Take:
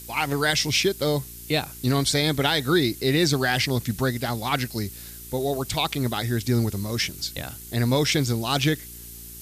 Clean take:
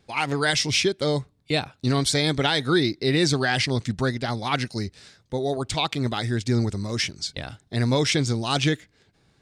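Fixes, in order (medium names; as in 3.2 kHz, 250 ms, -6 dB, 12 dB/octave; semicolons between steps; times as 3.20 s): de-hum 58.3 Hz, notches 7; noise print and reduce 20 dB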